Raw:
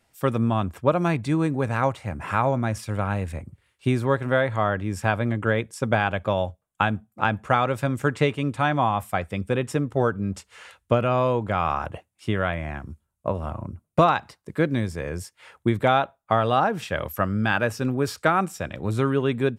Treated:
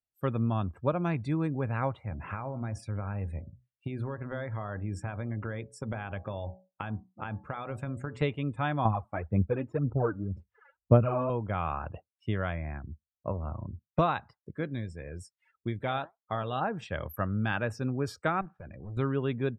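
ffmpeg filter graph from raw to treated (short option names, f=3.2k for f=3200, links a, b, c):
-filter_complex "[0:a]asettb=1/sr,asplit=3[a][b][c];[a]atrim=end=2.044[d];[b]atrim=start=2.04:end=8.22,asetpts=PTS-STARTPTS,afade=t=in:d=0.004:c=qsin,afade=t=out:st=6.176:d=0.004:c=qsin,acompressor=threshold=-22dB:ratio=12:attack=3.2:release=140:knee=1:detection=peak,bandreject=f=62.06:t=h:w=4,bandreject=f=124.12:t=h:w=4,bandreject=f=186.18:t=h:w=4,bandreject=f=248.24:t=h:w=4,bandreject=f=310.3:t=h:w=4,bandreject=f=372.36:t=h:w=4,bandreject=f=434.42:t=h:w=4,bandreject=f=496.48:t=h:w=4,bandreject=f=558.54:t=h:w=4,bandreject=f=620.6:t=h:w=4,bandreject=f=682.66:t=h:w=4,bandreject=f=744.72:t=h:w=4,bandreject=f=806.78:t=h:w=4,bandreject=f=868.84:t=h:w=4,bandreject=f=930.9:t=h:w=4,bandreject=f=992.96:t=h:w=4,bandreject=f=1.05502k:t=h:w=4,bandreject=f=1.11708k:t=h:w=4,bandreject=f=1.17914k:t=h:w=4[e];[c]atrim=start=8.216[f];[d][e]acrossfade=d=0.004:c1=hsin:c2=qsin[g];[g][f]acrossfade=d=0.004:c1=qsin:c2=hsin,asettb=1/sr,asplit=3[h][i][j];[h]atrim=end=8.854[k];[i]atrim=start=8.85:end=11.3,asetpts=PTS-STARTPTS,afade=t=in:d=0.004:c=qsin,afade=t=out:st=2.446:d=0.004:c=qsin,lowpass=f=1.1k:p=1,aphaser=in_gain=1:out_gain=1:delay=3.6:decay=0.65:speed=1.9:type=sinusoidal[l];[j]atrim=start=11.296[m];[k][l]acrossfade=d=0.004:c1=hsin:c2=qsin[n];[n][m]acrossfade=d=0.004:c1=qsin:c2=hsin,asettb=1/sr,asplit=3[o][p][q];[o]atrim=end=14.514[r];[p]atrim=start=14.51:end=16.61,asetpts=PTS-STARTPTS,afade=t=in:d=0.004:c=qsin,afade=t=out:st=2.096:d=0.004:c=qsin,highshelf=f=2.6k:g=5.5,flanger=delay=1.4:depth=6.8:regen=83:speed=1.7:shape=triangular[s];[q]atrim=start=16.606[t];[r][s]acrossfade=d=0.004:c1=hsin:c2=qsin[u];[u][t]acrossfade=d=0.004:c1=qsin:c2=hsin,asettb=1/sr,asplit=3[v][w][x];[v]atrim=end=18.414[y];[w]atrim=start=18.41:end=18.97,asetpts=PTS-STARTPTS,afade=t=in:d=0.004:c=qsin,afade=t=out:st=0.556:d=0.004:c=qsin,lowpass=f=2.8k:w=0.5412,lowpass=f=2.8k:w=1.3066,asoftclip=type=hard:threshold=-26.5dB,acompressor=threshold=-34dB:ratio=5:attack=3.2:release=140:knee=1:detection=peak[z];[x]atrim=start=18.966[aa];[y][z]acrossfade=d=0.004:c1=hsin:c2=qsin[ab];[ab][aa]acrossfade=d=0.004:c1=qsin:c2=hsin,afftdn=nr=27:nf=-42,lowshelf=f=120:g=9,volume=-9dB"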